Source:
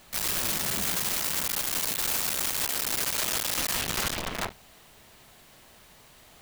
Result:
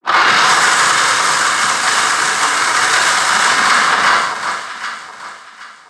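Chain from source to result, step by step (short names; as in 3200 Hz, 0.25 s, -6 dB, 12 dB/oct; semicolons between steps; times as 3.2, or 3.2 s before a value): tape start at the beginning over 1.65 s; HPF 280 Hz 12 dB/oct; band shelf 1200 Hz +15 dB 1 oct; in parallel at -3 dB: compressor, threshold -30 dBFS, peak gain reduction 14.5 dB; on the sum: power-law curve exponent 2; noise vocoder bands 16; soft clip -16 dBFS, distortion -19 dB; harmoniser +3 st -14 dB, +5 st -17 dB; on a send: echo with dull and thin repeats by turns 0.42 s, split 1100 Hz, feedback 54%, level -8 dB; on the sum: non-linear reverb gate 0.28 s falling, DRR -2.5 dB; speed mistake 44.1 kHz file played as 48 kHz; maximiser +19.5 dB; gain -1 dB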